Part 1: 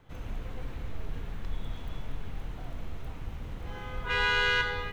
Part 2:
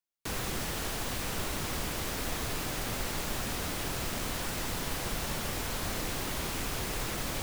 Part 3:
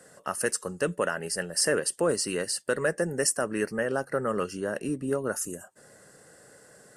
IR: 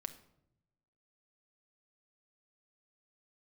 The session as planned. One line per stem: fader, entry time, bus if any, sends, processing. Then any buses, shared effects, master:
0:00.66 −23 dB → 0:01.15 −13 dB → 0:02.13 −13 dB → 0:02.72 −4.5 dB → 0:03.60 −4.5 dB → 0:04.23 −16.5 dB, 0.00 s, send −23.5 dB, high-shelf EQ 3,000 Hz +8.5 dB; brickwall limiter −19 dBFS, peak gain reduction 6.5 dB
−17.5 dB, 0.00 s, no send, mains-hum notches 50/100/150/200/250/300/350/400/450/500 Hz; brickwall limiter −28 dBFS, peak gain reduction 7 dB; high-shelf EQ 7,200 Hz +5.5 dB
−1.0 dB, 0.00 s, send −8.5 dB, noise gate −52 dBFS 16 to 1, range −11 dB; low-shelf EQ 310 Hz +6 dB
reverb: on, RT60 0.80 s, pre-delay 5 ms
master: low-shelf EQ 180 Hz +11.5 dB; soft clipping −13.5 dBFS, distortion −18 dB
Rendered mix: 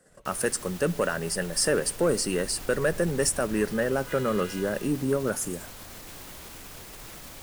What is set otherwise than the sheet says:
stem 2 −17.5 dB → −7.0 dB
master: missing low-shelf EQ 180 Hz +11.5 dB

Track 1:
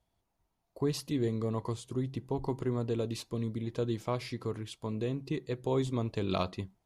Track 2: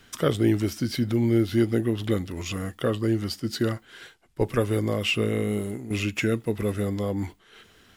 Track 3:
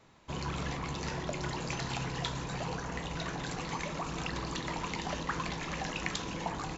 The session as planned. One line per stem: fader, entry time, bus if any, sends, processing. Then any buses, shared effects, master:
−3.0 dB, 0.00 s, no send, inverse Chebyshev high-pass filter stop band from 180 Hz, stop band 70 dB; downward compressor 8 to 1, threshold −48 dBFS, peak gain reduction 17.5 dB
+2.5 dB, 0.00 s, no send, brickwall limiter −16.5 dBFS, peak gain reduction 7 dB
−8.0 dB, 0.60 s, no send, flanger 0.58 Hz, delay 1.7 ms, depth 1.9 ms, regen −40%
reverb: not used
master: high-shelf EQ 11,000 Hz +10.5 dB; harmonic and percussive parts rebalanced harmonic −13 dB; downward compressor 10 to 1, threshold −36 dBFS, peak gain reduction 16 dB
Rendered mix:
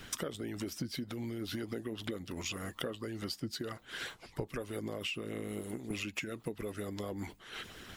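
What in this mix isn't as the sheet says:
stem 2 +2.5 dB → +10.0 dB
stem 3 −8.0 dB → −18.0 dB
master: missing high-shelf EQ 11,000 Hz +10.5 dB

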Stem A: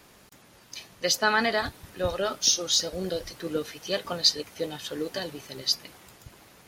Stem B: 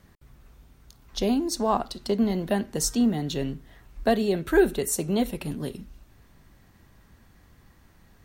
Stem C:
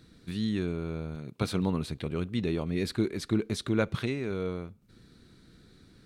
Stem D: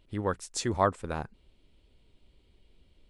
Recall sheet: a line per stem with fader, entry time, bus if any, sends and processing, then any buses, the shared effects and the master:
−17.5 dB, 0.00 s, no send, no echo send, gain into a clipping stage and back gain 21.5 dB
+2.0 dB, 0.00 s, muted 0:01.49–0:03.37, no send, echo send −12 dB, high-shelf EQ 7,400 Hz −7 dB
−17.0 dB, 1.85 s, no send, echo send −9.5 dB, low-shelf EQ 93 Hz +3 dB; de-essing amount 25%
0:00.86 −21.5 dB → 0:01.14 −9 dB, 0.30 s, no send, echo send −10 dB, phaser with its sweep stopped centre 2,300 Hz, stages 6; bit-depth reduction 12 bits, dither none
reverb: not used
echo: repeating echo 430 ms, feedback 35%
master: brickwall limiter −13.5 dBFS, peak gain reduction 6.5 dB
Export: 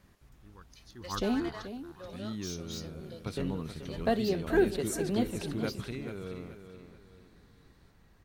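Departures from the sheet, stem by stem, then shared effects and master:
stem B +2.0 dB → −6.0 dB
stem C −17.0 dB → −9.0 dB

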